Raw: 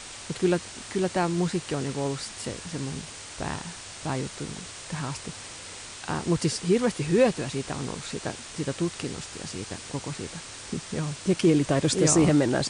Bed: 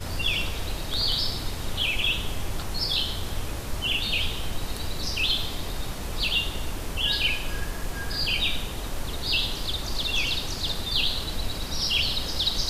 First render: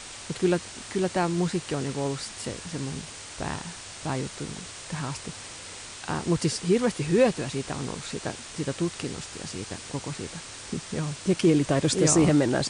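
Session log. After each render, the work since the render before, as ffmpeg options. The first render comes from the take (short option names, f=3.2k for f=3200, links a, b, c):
-af anull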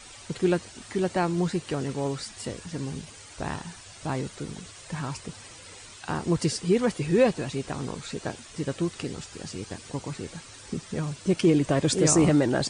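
-af "afftdn=nr=10:nf=-42"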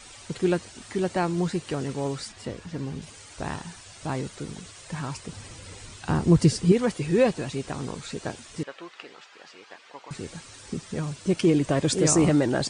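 -filter_complex "[0:a]asettb=1/sr,asplit=3[a][b][c];[a]atrim=end=2.324[d];[b]atrim=start=2.32:end=3.02,asetpts=PTS-STARTPTS,afade=t=in:d=0.004:c=qsin,afade=t=out:st=0.696:d=0.004:c=qsin,aemphasis=mode=reproduction:type=50fm[e];[c]atrim=start=3.016[f];[d][e]acrossfade=d=0.004:c1=hsin:c2=qsin[g];[g][f]acrossfade=d=0.004:c1=qsin:c2=hsin,asettb=1/sr,asplit=3[h][i][j];[h]atrim=end=5.324[k];[i]atrim=start=5.32:end=6.72,asetpts=PTS-STARTPTS,afade=t=in:d=0.004:c=qsin,afade=t=out:st=1.396:d=0.004:c=qsin,lowshelf=f=280:g=11.5[l];[j]atrim=start=6.716[m];[k][l]acrossfade=d=0.004:c1=hsin:c2=qsin[n];[n][m]acrossfade=d=0.004:c1=qsin:c2=hsin,asettb=1/sr,asplit=3[o][p][q];[o]atrim=end=8.634[r];[p]atrim=start=8.63:end=10.11,asetpts=PTS-STARTPTS,afade=t=in:d=0.004:c=qsin,afade=t=out:st=1.476:d=0.004:c=qsin,highpass=780,lowpass=2.9k[s];[q]atrim=start=10.106[t];[r][s]acrossfade=d=0.004:c1=hsin:c2=qsin[u];[u][t]acrossfade=d=0.004:c1=qsin:c2=hsin"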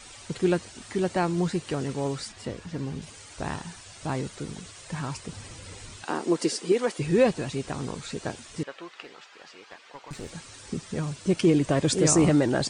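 -filter_complex "[0:a]asettb=1/sr,asplit=3[a][b][c];[a]atrim=end=6.044[d];[b]atrim=start=6.04:end=6.98,asetpts=PTS-STARTPTS,afade=t=in:d=0.004:c=qsin,afade=t=out:st=0.936:d=0.004:c=qsin,highpass=f=290:w=0.5412,highpass=f=290:w=1.3066[e];[c]atrim=start=6.976[f];[d][e]acrossfade=d=0.004:c1=hsin:c2=qsin[g];[g][f]acrossfade=d=0.004:c1=qsin:c2=hsin,asettb=1/sr,asplit=3[h][i][j];[h]atrim=end=9.044[k];[i]atrim=start=9.04:end=10.32,asetpts=PTS-STARTPTS,afade=t=in:d=0.004:c=qsin,afade=t=out:st=1.276:d=0.004:c=qsin,aeval=exprs='clip(val(0),-1,0.0112)':c=same[l];[j]atrim=start=10.316[m];[k][l]acrossfade=d=0.004:c1=hsin:c2=qsin[n];[n][m]acrossfade=d=0.004:c1=qsin:c2=hsin"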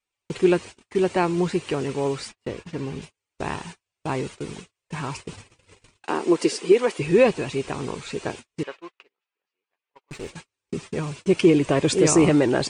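-af "agate=range=-43dB:threshold=-39dB:ratio=16:detection=peak,equalizer=f=400:t=o:w=0.67:g=7,equalizer=f=1k:t=o:w=0.67:g=5,equalizer=f=2.5k:t=o:w=0.67:g=8"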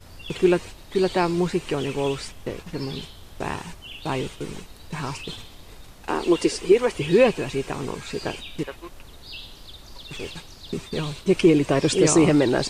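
-filter_complex "[1:a]volume=-13.5dB[a];[0:a][a]amix=inputs=2:normalize=0"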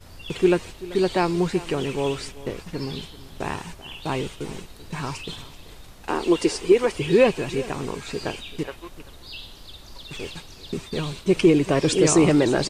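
-af "aecho=1:1:386:0.126"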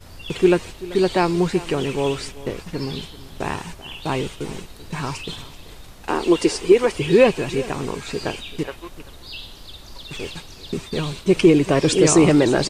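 -af "volume=3dB"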